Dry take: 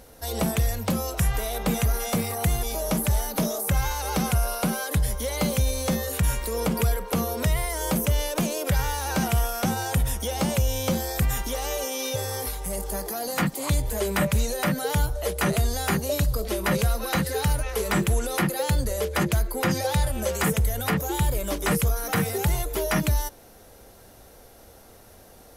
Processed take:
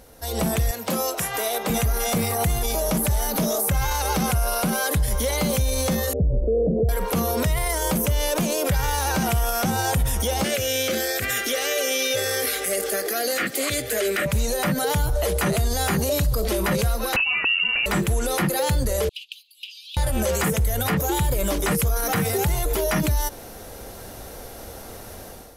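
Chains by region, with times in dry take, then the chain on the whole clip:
0.71–1.70 s: high-pass 290 Hz + upward expansion, over -36 dBFS
6.13–6.89 s: steep low-pass 670 Hz 72 dB/octave + dynamic bell 440 Hz, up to +6 dB, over -42 dBFS, Q 3.8
10.44–14.26 s: high-pass 110 Hz 24 dB/octave + peaking EQ 1.6 kHz +12 dB 2.2 oct + static phaser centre 390 Hz, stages 4
17.16–17.86 s: resonant low shelf 290 Hz +7.5 dB, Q 1.5 + frequency inversion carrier 2.8 kHz
19.09–19.97 s: steep high-pass 2.7 kHz 96 dB/octave + distance through air 440 m
whole clip: level rider; peak limiter -14.5 dBFS

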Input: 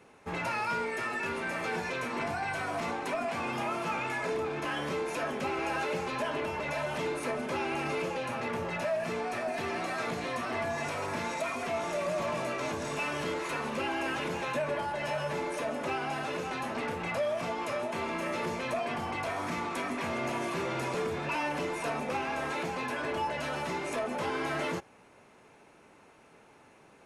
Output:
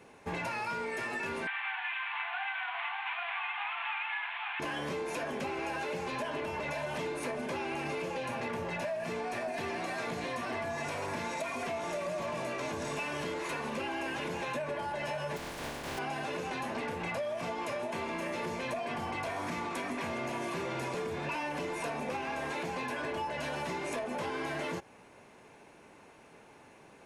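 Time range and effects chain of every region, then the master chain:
1.47–4.60 s: CVSD coder 16 kbps + brick-wall FIR high-pass 690 Hz + tilt shelf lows -8 dB, about 910 Hz
15.36–15.97 s: spectral contrast reduction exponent 0.15 + low-pass 1.1 kHz 6 dB/octave
whole clip: band-stop 1.3 kHz, Q 14; compression, threshold -35 dBFS; trim +2 dB

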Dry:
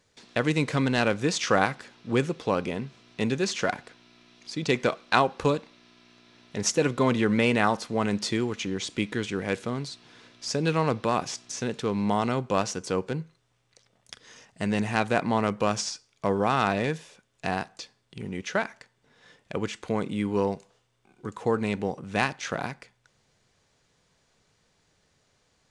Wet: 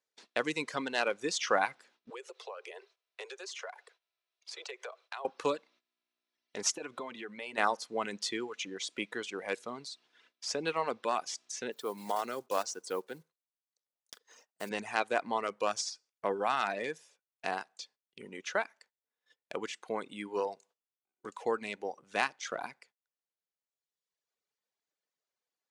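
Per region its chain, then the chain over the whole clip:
2.10–5.25 s: steep high-pass 380 Hz 96 dB/octave + compression 5:1, threshold -35 dBFS
6.72–7.58 s: compression, threshold -28 dBFS + band-stop 490 Hz, Q 13
11.72–14.71 s: block-companded coder 5-bit + high-pass 190 Hz 6 dB/octave + peaking EQ 2.4 kHz -5.5 dB 1.1 oct
whole clip: high-pass 390 Hz 12 dB/octave; gate -53 dBFS, range -17 dB; reverb removal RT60 1.5 s; trim -4 dB

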